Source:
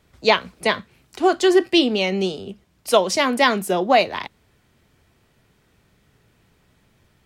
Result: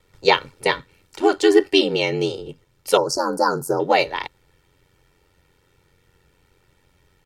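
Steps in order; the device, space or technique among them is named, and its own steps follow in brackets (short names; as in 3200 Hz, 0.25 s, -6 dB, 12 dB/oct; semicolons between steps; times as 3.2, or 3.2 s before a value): ring-modulated robot voice (ring modulator 45 Hz; comb 2.2 ms, depth 60%); 2.97–3.8 Chebyshev band-stop 1600–4400 Hz, order 5; gain +1.5 dB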